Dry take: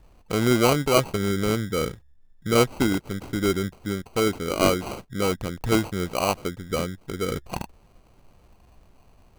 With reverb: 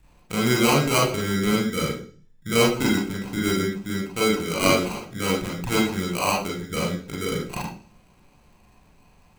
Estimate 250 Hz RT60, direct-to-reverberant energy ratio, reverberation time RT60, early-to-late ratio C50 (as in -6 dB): 0.55 s, -3.5 dB, 0.40 s, 5.5 dB